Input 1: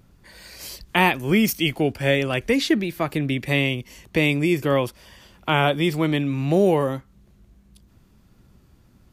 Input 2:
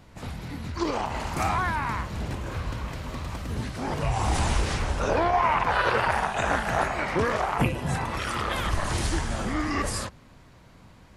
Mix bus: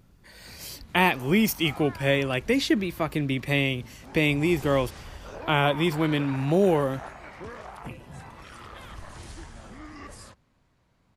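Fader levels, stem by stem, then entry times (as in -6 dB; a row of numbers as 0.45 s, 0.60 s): -3.0 dB, -15.5 dB; 0.00 s, 0.25 s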